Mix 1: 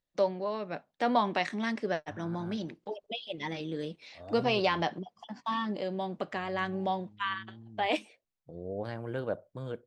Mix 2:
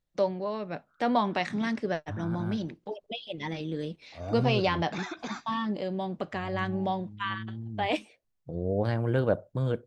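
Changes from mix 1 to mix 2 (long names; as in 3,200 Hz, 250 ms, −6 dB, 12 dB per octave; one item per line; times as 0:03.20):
second voice +6.5 dB
background: unmuted
master: add low-shelf EQ 160 Hz +10 dB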